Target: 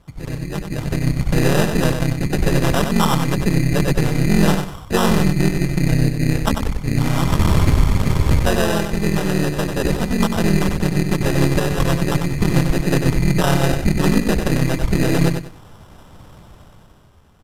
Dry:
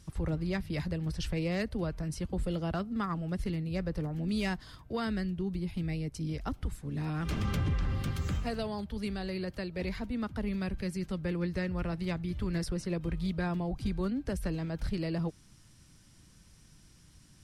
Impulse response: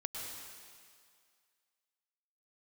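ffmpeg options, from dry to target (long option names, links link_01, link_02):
-filter_complex "[0:a]highshelf=frequency=3300:gain=10,bandreject=frequency=60:width_type=h:width=6,bandreject=frequency=120:width_type=h:width=6,bandreject=frequency=180:width_type=h:width=6,bandreject=frequency=240:width_type=h:width=6,bandreject=frequency=300:width_type=h:width=6,bandreject=frequency=360:width_type=h:width=6,acrossover=split=2000[link_01][link_02];[link_01]acontrast=82[link_03];[link_02]alimiter=level_in=19dB:limit=-24dB:level=0:latency=1:release=381,volume=-19dB[link_04];[link_03][link_04]amix=inputs=2:normalize=0,dynaudnorm=framelen=160:gausssize=11:maxgain=12dB,asplit=2[link_05][link_06];[link_06]asetrate=35002,aresample=44100,atempo=1.25992,volume=0dB[link_07];[link_05][link_07]amix=inputs=2:normalize=0,acrusher=samples=20:mix=1:aa=0.000001,aeval=exprs='1.19*(cos(1*acos(clip(val(0)/1.19,-1,1)))-cos(1*PI/2))+0.168*(cos(6*acos(clip(val(0)/1.19,-1,1)))-cos(6*PI/2))':channel_layout=same,asplit=2[link_08][link_09];[link_09]aecho=0:1:95|190|285:0.473|0.123|0.032[link_10];[link_08][link_10]amix=inputs=2:normalize=0,aresample=32000,aresample=44100,volume=-6dB"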